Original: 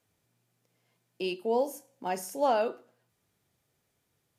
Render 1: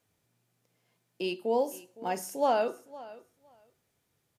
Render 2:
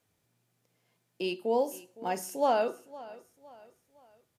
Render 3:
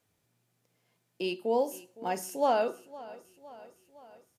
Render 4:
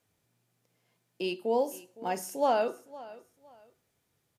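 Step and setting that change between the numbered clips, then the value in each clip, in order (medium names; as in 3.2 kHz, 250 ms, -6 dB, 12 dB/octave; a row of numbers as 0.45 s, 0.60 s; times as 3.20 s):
feedback delay, feedback: 15%, 40%, 59%, 26%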